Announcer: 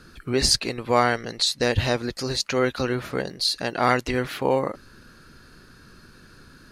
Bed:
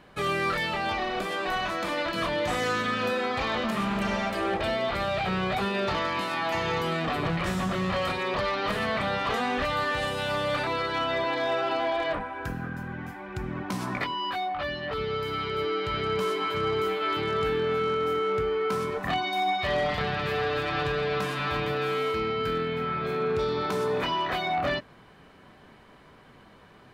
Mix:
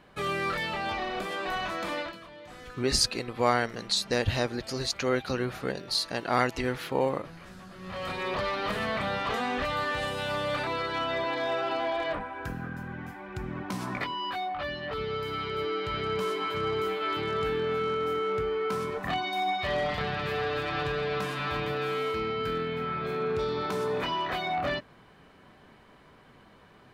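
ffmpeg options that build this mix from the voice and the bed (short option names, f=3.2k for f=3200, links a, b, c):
-filter_complex "[0:a]adelay=2500,volume=-5dB[a];[1:a]volume=14dB,afade=t=out:st=1.96:d=0.23:silence=0.149624,afade=t=in:st=7.78:d=0.48:silence=0.141254[b];[a][b]amix=inputs=2:normalize=0"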